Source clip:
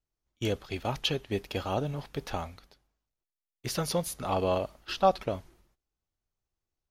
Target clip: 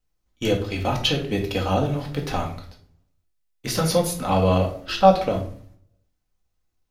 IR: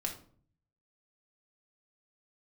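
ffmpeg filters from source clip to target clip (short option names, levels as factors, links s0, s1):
-filter_complex "[1:a]atrim=start_sample=2205[s0];[0:a][s0]afir=irnorm=-1:irlink=0,volume=2.24"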